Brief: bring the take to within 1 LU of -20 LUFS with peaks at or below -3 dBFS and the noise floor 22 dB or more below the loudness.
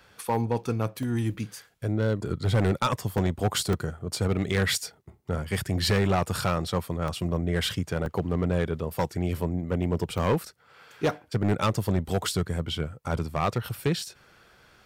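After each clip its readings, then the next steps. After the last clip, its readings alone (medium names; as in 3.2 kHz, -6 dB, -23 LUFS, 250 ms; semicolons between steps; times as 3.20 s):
clipped samples 1.6%; clipping level -18.0 dBFS; dropouts 8; longest dropout 2.3 ms; loudness -28.0 LUFS; peak level -18.0 dBFS; loudness target -20.0 LUFS
-> clip repair -18 dBFS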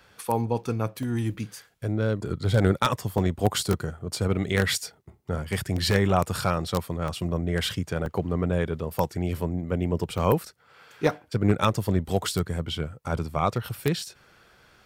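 clipped samples 0.0%; dropouts 8; longest dropout 2.3 ms
-> interpolate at 1.03/2.29/3.18/3.73/6.54/7.08/8.06/10.18 s, 2.3 ms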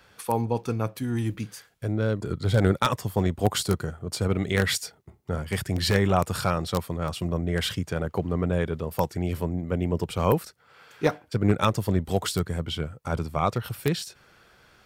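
dropouts 0; loudness -27.0 LUFS; peak level -9.0 dBFS; loudness target -20.0 LUFS
-> trim +7 dB; peak limiter -3 dBFS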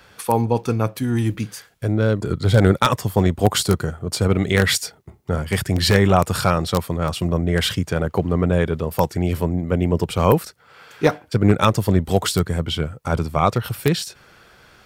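loudness -20.0 LUFS; peak level -3.0 dBFS; noise floor -51 dBFS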